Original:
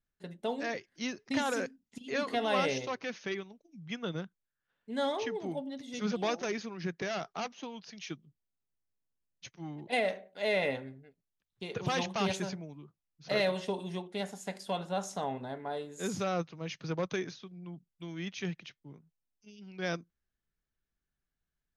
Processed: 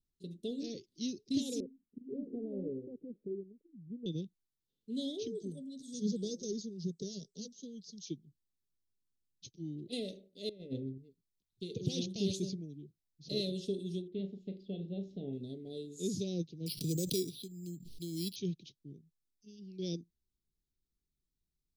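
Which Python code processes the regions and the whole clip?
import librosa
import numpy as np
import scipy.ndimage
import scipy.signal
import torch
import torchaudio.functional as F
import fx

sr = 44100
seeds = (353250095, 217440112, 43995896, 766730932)

y = fx.chain(x, sr, fx.bessel_lowpass(hz=540.0, order=4),
    fx.peak_eq(hz=95.0, db=-11.5, octaves=1.3), at=(1.6, 4.06))
y = fx.chain(y, sr, fx.peak_eq(hz=8000.0, db=14.5, octaves=0.4),
    fx.fixed_phaser(hz=480.0, stages=8), at=(5.27, 8.06))
y = fx.chain(y, sr, fx.lowpass(hz=1100.0, slope=6),
    fx.over_compress(threshold_db=-37.0, ratio=-0.5), at=(10.49, 10.98))
y = fx.chain(y, sr, fx.lowpass(hz=2600.0, slope=24),
    fx.doubler(ms=36.0, db=-10.5), at=(14.08, 15.33))
y = fx.chain(y, sr, fx.resample_bad(factor=6, down='filtered', up='hold'),
    fx.high_shelf(hz=2100.0, db=8.5),
    fx.pre_swell(db_per_s=57.0), at=(16.66, 18.36))
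y = scipy.signal.sosfilt(scipy.signal.cheby1(3, 1.0, [390.0, 3800.0], 'bandstop', fs=sr, output='sos'), y)
y = fx.high_shelf(y, sr, hz=8400.0, db=-5.0)
y = y * librosa.db_to_amplitude(1.0)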